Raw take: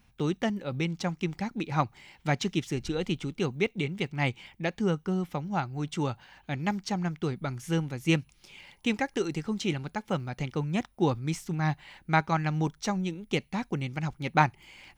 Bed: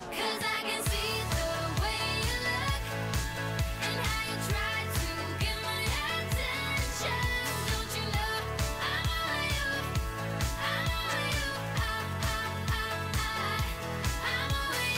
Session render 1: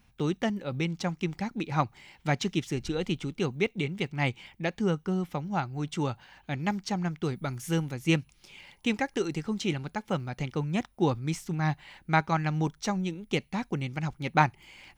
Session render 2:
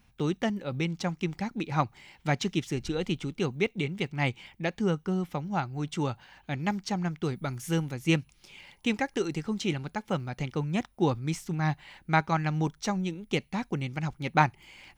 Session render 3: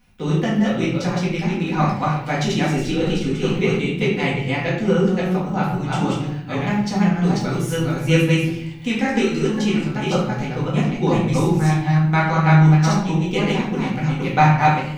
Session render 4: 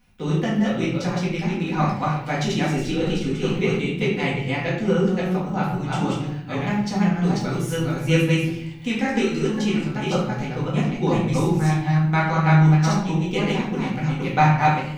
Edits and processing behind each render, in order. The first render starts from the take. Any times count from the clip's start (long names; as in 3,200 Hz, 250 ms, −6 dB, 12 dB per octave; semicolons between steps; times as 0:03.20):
0:07.25–0:07.94: high-shelf EQ 8,700 Hz +9.5 dB
no processing that can be heard
delay that plays each chunk backwards 274 ms, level −1 dB; rectangular room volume 140 cubic metres, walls mixed, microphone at 1.9 metres
level −2.5 dB